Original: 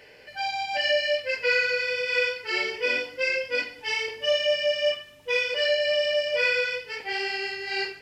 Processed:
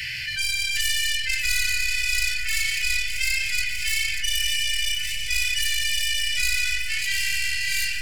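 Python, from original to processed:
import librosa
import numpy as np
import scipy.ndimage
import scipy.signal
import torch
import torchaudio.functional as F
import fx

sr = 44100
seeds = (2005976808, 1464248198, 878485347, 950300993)

y = fx.tracing_dist(x, sr, depth_ms=0.18)
y = scipy.signal.sosfilt(scipy.signal.cheby2(4, 40, [240.0, 1100.0], 'bandstop', fs=sr, output='sos'), y)
y = fx.echo_alternate(y, sr, ms=295, hz=2300.0, feedback_pct=81, wet_db=-14.0)
y = fx.env_flatten(y, sr, amount_pct=70)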